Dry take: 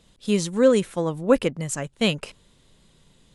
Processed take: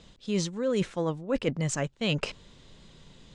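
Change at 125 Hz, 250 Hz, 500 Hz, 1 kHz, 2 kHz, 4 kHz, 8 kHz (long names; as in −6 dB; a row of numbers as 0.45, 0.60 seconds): −1.5, −7.0, −9.0, −6.5, −4.5, −5.0, −4.5 decibels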